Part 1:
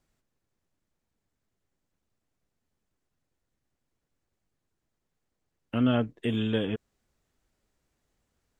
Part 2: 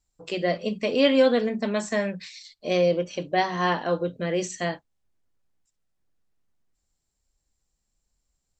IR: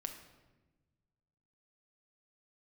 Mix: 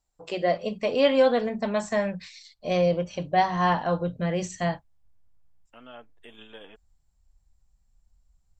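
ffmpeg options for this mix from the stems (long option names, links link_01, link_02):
-filter_complex "[0:a]highpass=frequency=1300:poles=1,volume=-7dB[link_01];[1:a]asubboost=boost=9:cutoff=130,volume=-4dB,asplit=2[link_02][link_03];[link_03]apad=whole_len=378969[link_04];[link_01][link_04]sidechaingate=range=-8dB:threshold=-56dB:ratio=16:detection=peak[link_05];[link_05][link_02]amix=inputs=2:normalize=0,equalizer=frequency=790:width_type=o:width=1.4:gain=9"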